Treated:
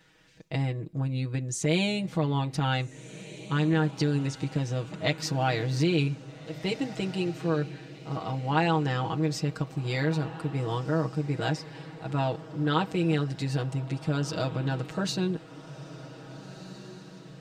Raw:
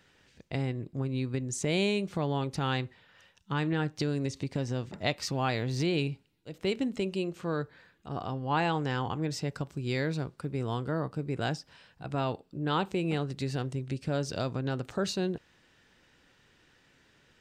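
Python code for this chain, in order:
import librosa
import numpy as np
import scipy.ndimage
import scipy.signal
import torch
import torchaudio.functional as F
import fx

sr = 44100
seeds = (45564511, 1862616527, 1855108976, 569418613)

y = x + 0.89 * np.pad(x, (int(6.3 * sr / 1000.0), 0))[:len(x)]
y = fx.echo_diffused(y, sr, ms=1658, feedback_pct=47, wet_db=-15.0)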